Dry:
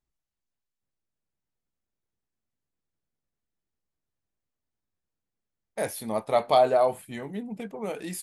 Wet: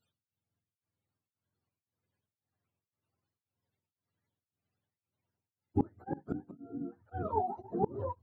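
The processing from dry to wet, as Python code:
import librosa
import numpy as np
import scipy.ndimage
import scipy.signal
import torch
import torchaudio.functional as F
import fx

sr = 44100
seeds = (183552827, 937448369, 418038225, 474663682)

y = fx.octave_mirror(x, sr, pivot_hz=420.0)
y = fx.rider(y, sr, range_db=3, speed_s=2.0)
y = fx.dynamic_eq(y, sr, hz=760.0, q=0.71, threshold_db=-34.0, ratio=4.0, max_db=5)
y = fx.gate_flip(y, sr, shuts_db=-21.0, range_db=-26)
y = y * np.abs(np.cos(np.pi * 1.9 * np.arange(len(y)) / sr))
y = y * 10.0 ** (5.5 / 20.0)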